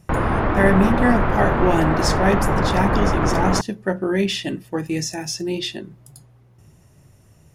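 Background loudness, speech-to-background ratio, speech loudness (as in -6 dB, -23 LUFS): -21.0 LUFS, -1.5 dB, -22.5 LUFS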